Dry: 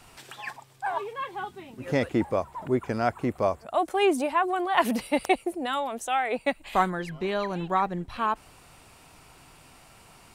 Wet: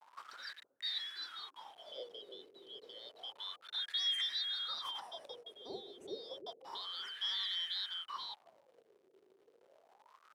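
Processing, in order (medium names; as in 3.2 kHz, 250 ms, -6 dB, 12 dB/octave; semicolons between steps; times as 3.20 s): four frequency bands reordered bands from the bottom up 3412; high-pass 84 Hz 12 dB/octave; treble shelf 7.7 kHz +10 dB; hum notches 60/120/180/240/300/360/420/480/540 Hz; peak limiter -17.5 dBFS, peak gain reduction 11.5 dB; bit crusher 7-bit; wah-wah 0.3 Hz 380–1900 Hz, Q 10; bucket-brigade echo 312 ms, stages 1024, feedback 34%, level -8 dB; trim +12.5 dB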